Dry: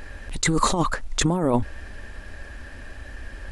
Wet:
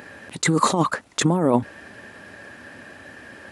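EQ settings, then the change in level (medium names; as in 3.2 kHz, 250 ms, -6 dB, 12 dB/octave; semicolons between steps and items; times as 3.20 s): high-pass 130 Hz 24 dB/octave; peaking EQ 5.5 kHz -3.5 dB 2.3 oct; +3.0 dB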